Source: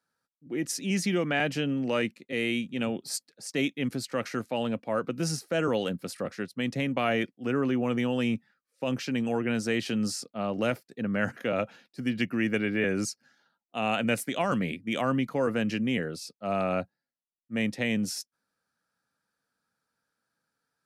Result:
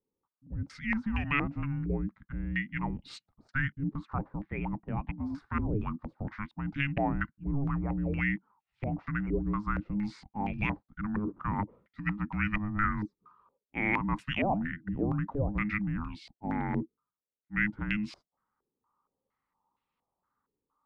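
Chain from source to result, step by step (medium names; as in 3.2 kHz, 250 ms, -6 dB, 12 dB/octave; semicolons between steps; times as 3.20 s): 4.24–5.26 s: distance through air 230 m; frequency shift -420 Hz; step-sequenced low-pass 4.3 Hz 410–2600 Hz; trim -4.5 dB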